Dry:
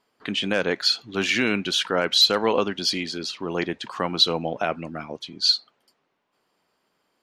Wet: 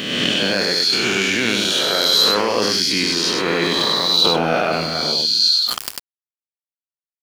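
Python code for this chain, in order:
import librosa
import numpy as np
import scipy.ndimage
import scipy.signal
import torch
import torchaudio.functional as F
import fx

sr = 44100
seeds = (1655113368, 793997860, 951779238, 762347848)

p1 = fx.spec_swells(x, sr, rise_s=1.56)
p2 = scipy.signal.sosfilt(scipy.signal.butter(2, 61.0, 'highpass', fs=sr, output='sos'), p1)
p3 = fx.high_shelf(p2, sr, hz=7600.0, db=8.0)
p4 = fx.over_compress(p3, sr, threshold_db=-23.0, ratio=-0.5)
p5 = p3 + (p4 * 10.0 ** (0.0 / 20.0))
p6 = np.sign(p5) * np.maximum(np.abs(p5) - 10.0 ** (-41.0 / 20.0), 0.0)
p7 = p6 + fx.echo_single(p6, sr, ms=98, db=-4.0, dry=0)
p8 = fx.sustainer(p7, sr, db_per_s=29.0)
y = p8 * 10.0 ** (-4.5 / 20.0)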